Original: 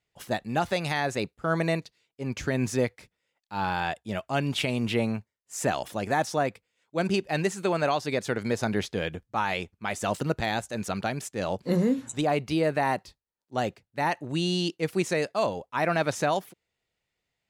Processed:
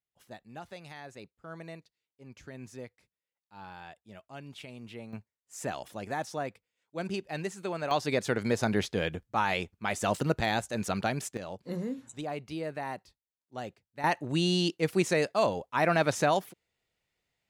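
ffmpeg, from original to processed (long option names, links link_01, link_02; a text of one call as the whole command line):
ffmpeg -i in.wav -af "asetnsamples=nb_out_samples=441:pad=0,asendcmd='5.13 volume volume -8.5dB;7.91 volume volume -0.5dB;11.37 volume volume -11dB;14.04 volume volume 0dB',volume=-18dB" out.wav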